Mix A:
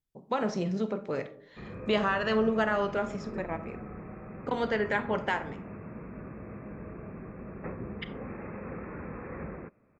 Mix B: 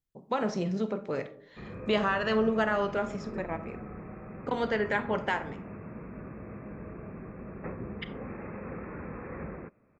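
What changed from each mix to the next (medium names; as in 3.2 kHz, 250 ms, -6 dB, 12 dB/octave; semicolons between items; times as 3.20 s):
no change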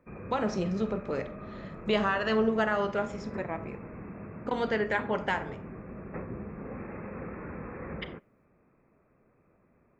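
background: entry -1.50 s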